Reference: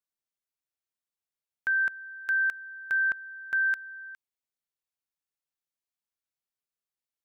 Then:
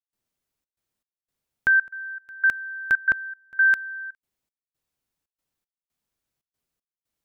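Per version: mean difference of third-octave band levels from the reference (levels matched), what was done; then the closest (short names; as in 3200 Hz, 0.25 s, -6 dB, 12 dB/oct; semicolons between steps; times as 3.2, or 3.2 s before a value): 2.0 dB: low shelf 450 Hz +11 dB; step gate ".xxxx.xx." 117 bpm -24 dB; gain +7.5 dB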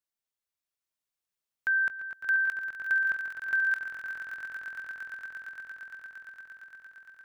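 4.0 dB: bell 270 Hz -2 dB 2.5 oct; on a send: swelling echo 0.115 s, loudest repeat 8, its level -9.5 dB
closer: first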